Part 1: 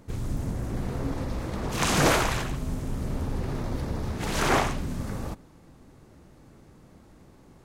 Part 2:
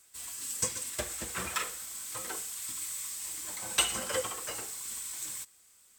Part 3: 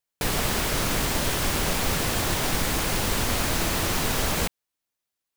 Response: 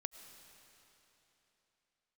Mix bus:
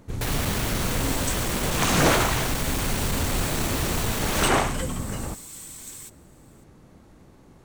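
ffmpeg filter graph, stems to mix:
-filter_complex "[0:a]volume=1.5dB[link_01];[1:a]adelay=650,volume=-1.5dB[link_02];[2:a]asoftclip=type=tanh:threshold=-24.5dB,volume=1dB[link_03];[link_01][link_02][link_03]amix=inputs=3:normalize=0,bandreject=frequency=5000:width=21"

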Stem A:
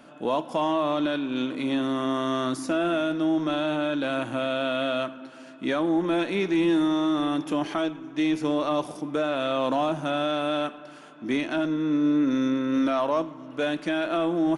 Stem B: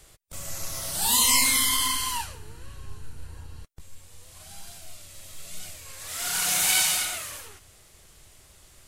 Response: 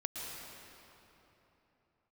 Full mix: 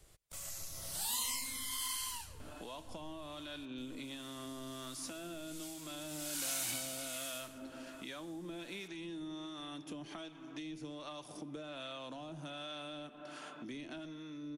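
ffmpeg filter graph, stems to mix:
-filter_complex "[0:a]acrossover=split=140[link_01][link_02];[link_02]acompressor=threshold=-37dB:ratio=3[link_03];[link_01][link_03]amix=inputs=2:normalize=0,adelay=2400,volume=1.5dB,asplit=2[link_04][link_05];[link_05]volume=-20dB[link_06];[1:a]volume=-7dB,asplit=2[link_07][link_08];[link_08]volume=-23dB[link_09];[2:a]atrim=start_sample=2205[link_10];[link_06][link_09]amix=inputs=2:normalize=0[link_11];[link_11][link_10]afir=irnorm=-1:irlink=0[link_12];[link_04][link_07][link_12]amix=inputs=3:normalize=0,acrossover=split=2800|5900[link_13][link_14][link_15];[link_13]acompressor=threshold=-44dB:ratio=4[link_16];[link_14]acompressor=threshold=-44dB:ratio=4[link_17];[link_15]acompressor=threshold=-38dB:ratio=4[link_18];[link_16][link_17][link_18]amix=inputs=3:normalize=0,acrossover=split=600[link_19][link_20];[link_19]aeval=exprs='val(0)*(1-0.5/2+0.5/2*cos(2*PI*1.3*n/s))':channel_layout=same[link_21];[link_20]aeval=exprs='val(0)*(1-0.5/2-0.5/2*cos(2*PI*1.3*n/s))':channel_layout=same[link_22];[link_21][link_22]amix=inputs=2:normalize=0"

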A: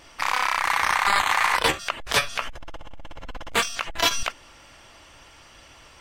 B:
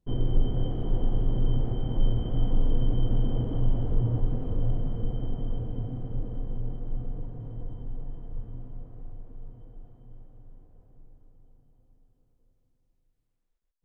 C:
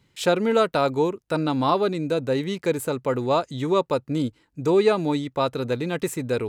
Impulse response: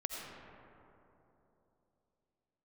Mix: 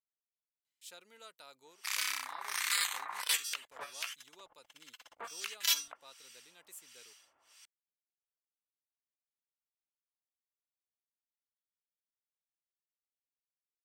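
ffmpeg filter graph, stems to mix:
-filter_complex "[0:a]bass=frequency=250:gain=-3,treble=frequency=4000:gain=0,acrossover=split=1200[link_01][link_02];[link_01]aeval=exprs='val(0)*(1-1/2+1/2*cos(2*PI*1.4*n/s))':channel_layout=same[link_03];[link_02]aeval=exprs='val(0)*(1-1/2-1/2*cos(2*PI*1.4*n/s))':channel_layout=same[link_04];[link_03][link_04]amix=inputs=2:normalize=0,adelay=1650,volume=1.5dB[link_05];[2:a]adelay=650,volume=-16.5dB[link_06];[link_05][link_06]amix=inputs=2:normalize=0,aderivative"

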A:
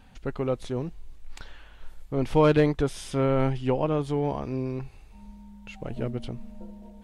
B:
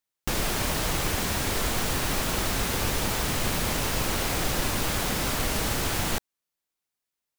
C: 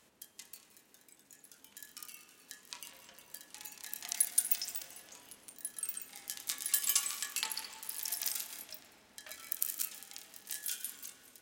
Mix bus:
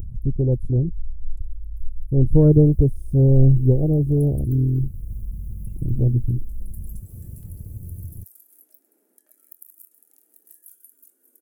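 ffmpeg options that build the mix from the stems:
ffmpeg -i stem1.wav -i stem2.wav -i stem3.wav -filter_complex "[0:a]lowshelf=frequency=170:width_type=q:width=1.5:gain=12.5,volume=2.5dB[link_01];[1:a]equalizer=frequency=92:width=1.6:gain=14.5,adelay=2050,volume=-18.5dB[link_02];[2:a]highpass=frequency=270:width=0.5412,highpass=frequency=270:width=1.3066,equalizer=frequency=1400:width_type=o:width=1.2:gain=14,volume=-10dB[link_03];[link_01][link_02][link_03]amix=inputs=3:normalize=0,acompressor=mode=upward:threshold=-22dB:ratio=2.5,afwtdn=0.0891,firequalizer=gain_entry='entry(150,0);entry(330,7);entry(730,-12);entry(1100,-25);entry(3800,-24);entry(11000,8)':delay=0.05:min_phase=1" out.wav

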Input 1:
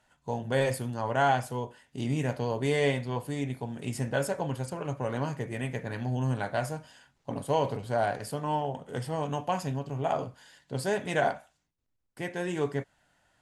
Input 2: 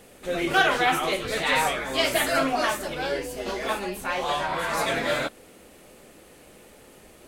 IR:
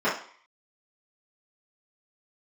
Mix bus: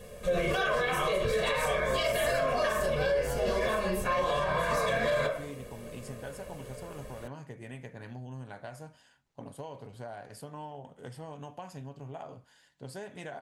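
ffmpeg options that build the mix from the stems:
-filter_complex "[0:a]acompressor=threshold=-31dB:ratio=6,adelay=2100,volume=-8dB[link_01];[1:a]lowshelf=frequency=340:gain=7.5,aecho=1:1:1.8:0.82,volume=-3.5dB,asplit=2[link_02][link_03];[link_03]volume=-15.5dB[link_04];[2:a]atrim=start_sample=2205[link_05];[link_04][link_05]afir=irnorm=-1:irlink=0[link_06];[link_01][link_02][link_06]amix=inputs=3:normalize=0,alimiter=limit=-20dB:level=0:latency=1:release=95"

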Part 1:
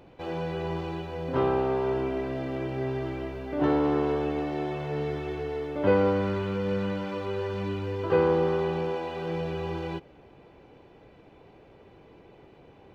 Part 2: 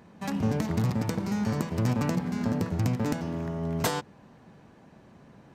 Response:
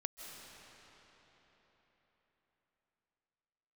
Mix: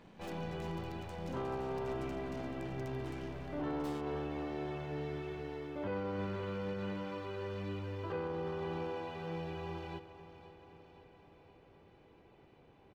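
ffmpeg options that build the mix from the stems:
-filter_complex "[0:a]equalizer=frequency=470:width_type=o:width=0.96:gain=-3,volume=-8.5dB,asplit=2[link_01][link_02];[link_02]volume=-14dB[link_03];[1:a]equalizer=frequency=3100:width_type=o:width=0.96:gain=8,acompressor=threshold=-33dB:ratio=6,aeval=exprs='(tanh(178*val(0)+0.8)-tanh(0.8))/178':channel_layout=same,volume=-3dB[link_04];[link_03]aecho=0:1:519|1038|1557|2076|2595|3114|3633|4152|4671:1|0.59|0.348|0.205|0.121|0.0715|0.0422|0.0249|0.0147[link_05];[link_01][link_04][link_05]amix=inputs=3:normalize=0,alimiter=level_in=6.5dB:limit=-24dB:level=0:latency=1:release=20,volume=-6.5dB"

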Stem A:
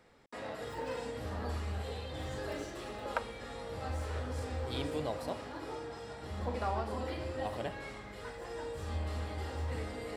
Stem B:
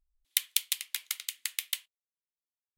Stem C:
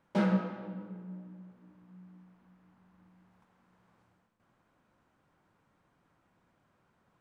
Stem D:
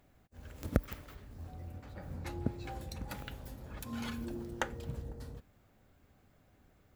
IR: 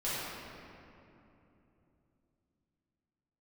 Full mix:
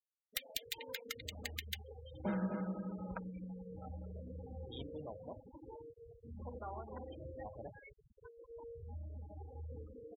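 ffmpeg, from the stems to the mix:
-filter_complex "[0:a]equalizer=frequency=3100:width=2.4:gain=4.5,volume=-7.5dB,asplit=2[link_01][link_02];[link_02]volume=-21dB[link_03];[1:a]equalizer=frequency=100:width_type=o:width=0.67:gain=7,equalizer=frequency=250:width_type=o:width=0.67:gain=-12,equalizer=frequency=1600:width_type=o:width=0.67:gain=7,equalizer=frequency=10000:width_type=o:width=0.67:gain=-10,aeval=exprs='(tanh(3.55*val(0)+0.25)-tanh(0.25))/3.55':channel_layout=same,aecho=1:1:3.8:0.49,volume=-3dB[link_04];[2:a]adelay=2100,volume=-2dB,asplit=2[link_05][link_06];[link_06]volume=-5.5dB[link_07];[3:a]asoftclip=type=tanh:threshold=-22dB,adelay=2350,volume=-14.5dB,asplit=2[link_08][link_09];[link_09]volume=-11dB[link_10];[link_03][link_07][link_10]amix=inputs=3:normalize=0,aecho=0:1:251|502|753|1004|1255:1|0.37|0.137|0.0507|0.0187[link_11];[link_01][link_04][link_05][link_08][link_11]amix=inputs=5:normalize=0,afftfilt=real='re*gte(hypot(re,im),0.0141)':imag='im*gte(hypot(re,im),0.0141)':win_size=1024:overlap=0.75,acompressor=threshold=-47dB:ratio=1.5"

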